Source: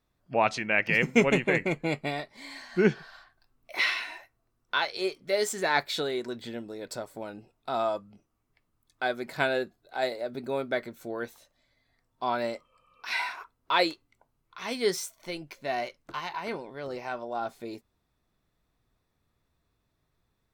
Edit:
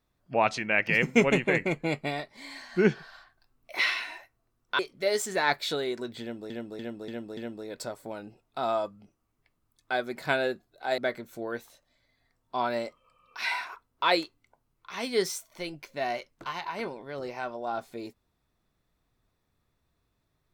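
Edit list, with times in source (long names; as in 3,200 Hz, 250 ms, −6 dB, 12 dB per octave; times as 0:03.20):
0:04.79–0:05.06: remove
0:06.48–0:06.77: repeat, 5 plays
0:10.09–0:10.66: remove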